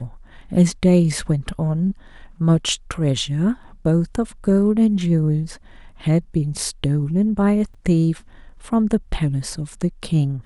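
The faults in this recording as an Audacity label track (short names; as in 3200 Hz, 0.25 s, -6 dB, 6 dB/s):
7.740000	7.750000	gap 5.6 ms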